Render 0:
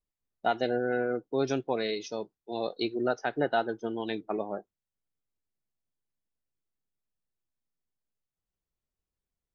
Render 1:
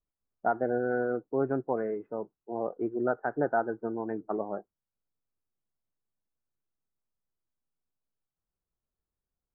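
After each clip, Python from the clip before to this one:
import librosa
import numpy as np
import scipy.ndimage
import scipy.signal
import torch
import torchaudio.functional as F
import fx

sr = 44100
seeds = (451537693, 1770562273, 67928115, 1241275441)

y = scipy.signal.sosfilt(scipy.signal.butter(8, 1600.0, 'lowpass', fs=sr, output='sos'), x)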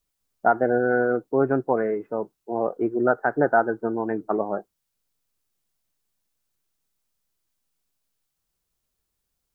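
y = fx.high_shelf(x, sr, hz=2000.0, db=9.5)
y = y * librosa.db_to_amplitude(7.0)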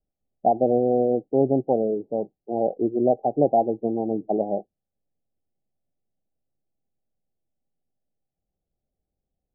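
y = scipy.signal.sosfilt(scipy.signal.cheby1(6, 3, 810.0, 'lowpass', fs=sr, output='sos'), x)
y = y * librosa.db_to_amplitude(3.0)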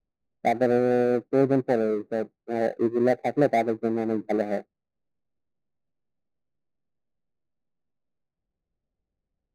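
y = scipy.ndimage.median_filter(x, 41, mode='constant')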